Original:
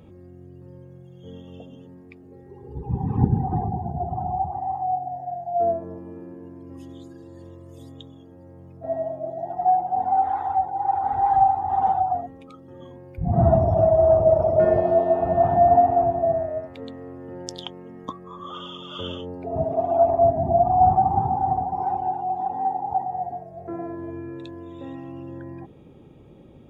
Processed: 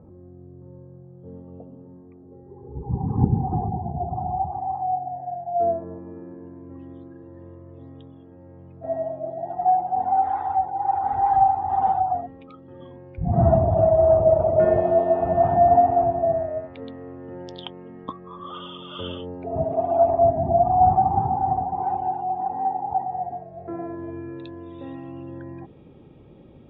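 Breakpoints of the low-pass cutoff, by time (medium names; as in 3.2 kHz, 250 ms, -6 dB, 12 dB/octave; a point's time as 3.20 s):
low-pass 24 dB/octave
4.24 s 1.2 kHz
5.04 s 2.1 kHz
7.80 s 2.1 kHz
8.85 s 3.6 kHz
22.23 s 3.6 kHz
22.46 s 2.4 kHz
23.00 s 4.1 kHz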